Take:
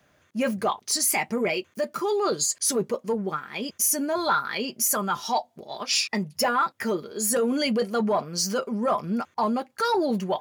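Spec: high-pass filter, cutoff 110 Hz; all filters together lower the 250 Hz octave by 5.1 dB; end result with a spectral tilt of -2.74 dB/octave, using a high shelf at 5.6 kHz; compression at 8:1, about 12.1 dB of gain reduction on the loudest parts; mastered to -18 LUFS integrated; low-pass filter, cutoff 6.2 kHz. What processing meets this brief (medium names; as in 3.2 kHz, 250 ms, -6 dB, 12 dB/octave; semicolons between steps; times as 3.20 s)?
high-pass 110 Hz; low-pass 6.2 kHz; peaking EQ 250 Hz -6 dB; treble shelf 5.6 kHz -5.5 dB; compression 8:1, threshold -33 dBFS; trim +18.5 dB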